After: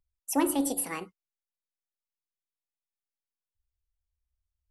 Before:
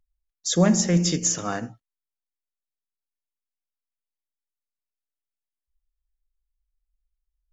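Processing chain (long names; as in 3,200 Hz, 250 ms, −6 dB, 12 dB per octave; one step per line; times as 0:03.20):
change of speed 1.6×
level −7 dB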